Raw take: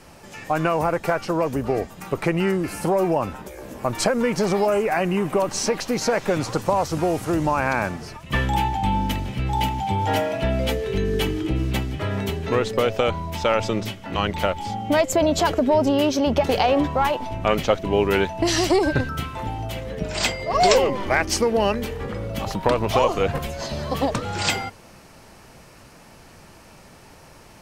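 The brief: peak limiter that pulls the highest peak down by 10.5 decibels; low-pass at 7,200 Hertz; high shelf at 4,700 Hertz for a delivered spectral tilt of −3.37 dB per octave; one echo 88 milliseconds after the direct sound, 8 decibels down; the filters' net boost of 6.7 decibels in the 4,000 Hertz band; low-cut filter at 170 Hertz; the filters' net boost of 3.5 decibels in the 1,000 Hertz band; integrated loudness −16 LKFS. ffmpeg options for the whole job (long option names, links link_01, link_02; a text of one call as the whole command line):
ffmpeg -i in.wav -af "highpass=170,lowpass=7200,equalizer=frequency=1000:width_type=o:gain=4,equalizer=frequency=4000:width_type=o:gain=5,highshelf=frequency=4700:gain=8,alimiter=limit=-9.5dB:level=0:latency=1,aecho=1:1:88:0.398,volume=5.5dB" out.wav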